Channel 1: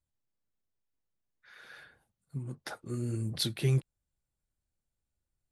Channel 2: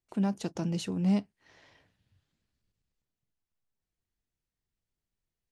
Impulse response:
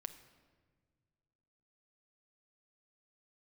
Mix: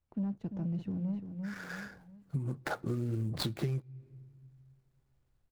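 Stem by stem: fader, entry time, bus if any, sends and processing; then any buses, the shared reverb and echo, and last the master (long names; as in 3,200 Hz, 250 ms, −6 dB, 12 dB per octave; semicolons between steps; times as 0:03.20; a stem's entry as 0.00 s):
+2.0 dB, 0.00 s, send −16 dB, no echo send, running median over 15 samples; automatic gain control gain up to 8 dB
−15.5 dB, 0.00 s, no send, echo send −10 dB, bass and treble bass +15 dB, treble −15 dB; leveller curve on the samples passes 1; parametric band 8,300 Hz −8 dB 2.7 octaves; automatic ducking −12 dB, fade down 0.55 s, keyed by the first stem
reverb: on, pre-delay 6 ms
echo: repeating echo 344 ms, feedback 40%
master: downward compressor 16 to 1, threshold −30 dBFS, peak gain reduction 18.5 dB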